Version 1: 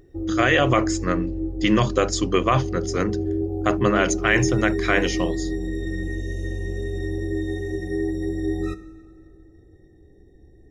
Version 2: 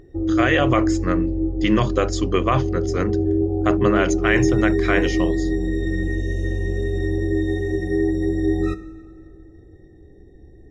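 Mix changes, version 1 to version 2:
background +5.0 dB
master: add high-shelf EQ 5,400 Hz −8 dB

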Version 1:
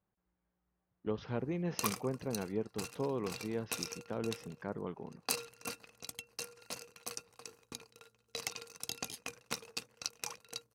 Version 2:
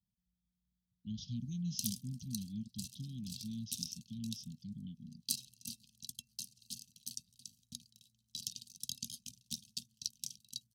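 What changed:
speech: remove high-frequency loss of the air 210 metres
master: add Chebyshev band-stop filter 240–3,200 Hz, order 5

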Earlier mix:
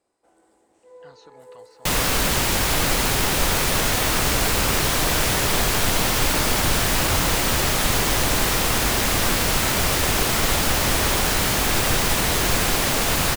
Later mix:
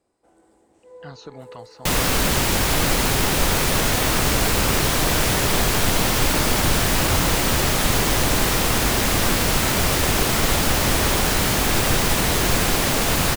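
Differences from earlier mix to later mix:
speech +8.5 dB
second sound: add low-shelf EQ 170 Hz −8 dB
master: add low-shelf EQ 300 Hz +9.5 dB

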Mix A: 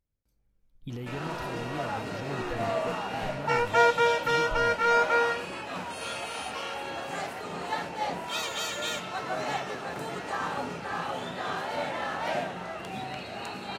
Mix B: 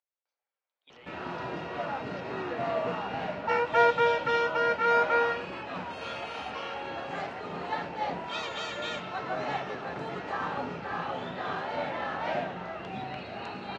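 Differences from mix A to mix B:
speech: add high-pass filter 660 Hz 24 dB per octave
master: add high-frequency loss of the air 180 metres

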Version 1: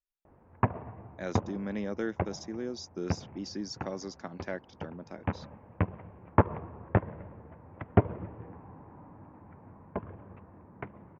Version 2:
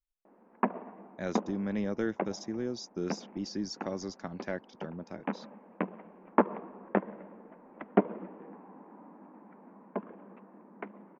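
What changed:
background: add elliptic high-pass filter 200 Hz
master: add low-shelf EQ 140 Hz +9.5 dB

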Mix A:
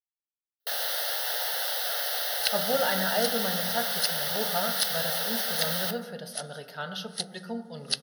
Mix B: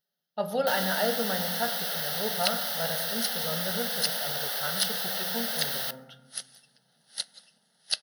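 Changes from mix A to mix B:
speech: entry −2.15 s
first sound: send −8.5 dB

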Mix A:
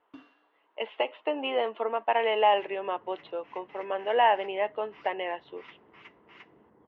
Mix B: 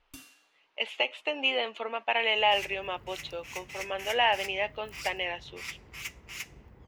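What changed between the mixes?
second sound +6.0 dB
master: remove loudspeaker in its box 200–2,700 Hz, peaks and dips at 210 Hz +4 dB, 310 Hz +7 dB, 440 Hz +6 dB, 670 Hz +4 dB, 1,000 Hz +7 dB, 2,400 Hz −10 dB

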